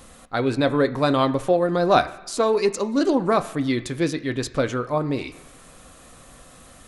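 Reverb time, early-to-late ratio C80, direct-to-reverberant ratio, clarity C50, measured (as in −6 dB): 1.3 s, 17.0 dB, 8.0 dB, 15.0 dB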